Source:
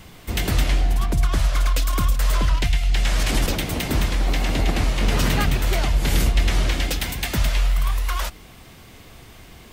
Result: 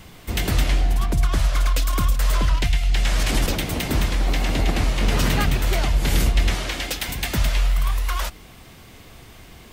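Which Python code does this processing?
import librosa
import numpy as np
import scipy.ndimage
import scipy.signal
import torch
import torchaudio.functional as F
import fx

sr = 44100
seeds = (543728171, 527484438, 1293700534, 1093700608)

y = fx.low_shelf(x, sr, hz=240.0, db=-10.5, at=(6.54, 7.09))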